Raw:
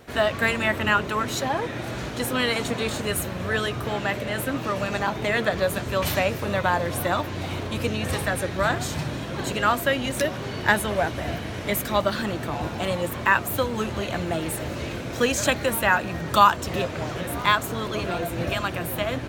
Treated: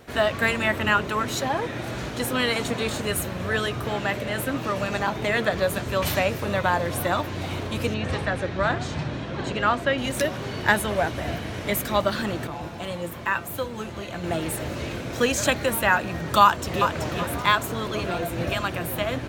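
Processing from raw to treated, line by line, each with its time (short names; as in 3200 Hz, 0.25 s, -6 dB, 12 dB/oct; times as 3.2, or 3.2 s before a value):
7.94–9.98 air absorption 110 m
12.47–14.24 resonator 170 Hz, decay 0.2 s
16.43–16.98 echo throw 0.38 s, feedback 30%, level -5.5 dB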